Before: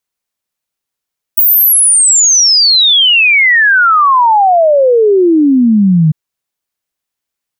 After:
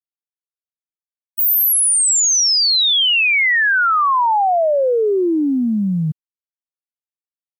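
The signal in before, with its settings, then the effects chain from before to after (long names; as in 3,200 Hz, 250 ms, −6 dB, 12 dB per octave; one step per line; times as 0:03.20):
exponential sine sweep 16,000 Hz → 150 Hz 4.75 s −4.5 dBFS
downward expander −2 dBFS
low-shelf EQ 180 Hz −6.5 dB
bit reduction 10 bits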